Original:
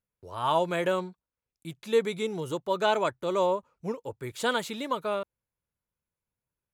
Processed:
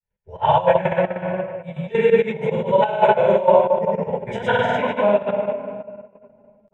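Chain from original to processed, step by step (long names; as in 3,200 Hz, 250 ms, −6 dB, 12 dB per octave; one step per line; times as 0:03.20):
high-frequency loss of the air 200 metres
phaser with its sweep stopped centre 1,200 Hz, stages 6
convolution reverb RT60 2.0 s, pre-delay 5 ms, DRR −14 dB
gate pattern "x.xx.xx.xx.x" 175 BPM −12 dB
granular cloud, pitch spread up and down by 0 semitones
level +3 dB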